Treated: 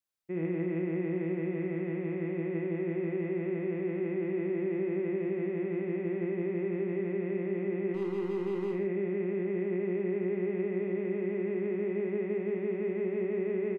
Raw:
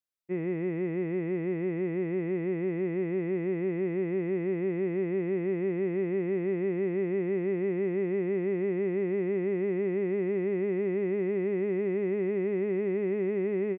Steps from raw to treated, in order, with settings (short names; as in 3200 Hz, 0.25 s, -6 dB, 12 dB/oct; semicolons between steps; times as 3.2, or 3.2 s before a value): limiter -27 dBFS, peak gain reduction 5.5 dB; 7.94–8.73 overloaded stage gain 31.5 dB; on a send: loudspeakers at several distances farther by 19 m -4 dB, 48 m -10 dB